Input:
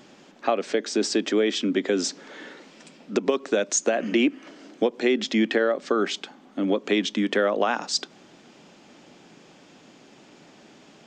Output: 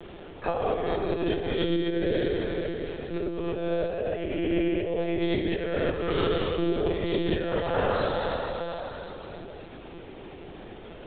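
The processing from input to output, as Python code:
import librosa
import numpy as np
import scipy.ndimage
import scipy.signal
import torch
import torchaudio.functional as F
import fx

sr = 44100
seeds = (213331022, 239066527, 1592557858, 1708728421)

y = fx.spec_trails(x, sr, decay_s=2.96)
y = fx.peak_eq(y, sr, hz=440.0, db=8.5, octaves=1.5)
y = fx.over_compress(y, sr, threshold_db=-15.0, ratio=-0.5)
y = fx.comb_fb(y, sr, f0_hz=55.0, decay_s=1.0, harmonics='odd', damping=0.0, mix_pct=80)
y = fx.echo_feedback(y, sr, ms=502, feedback_pct=19, wet_db=-12.0)
y = fx.lpc_monotone(y, sr, seeds[0], pitch_hz=170.0, order=16)
y = fx.band_squash(y, sr, depth_pct=40)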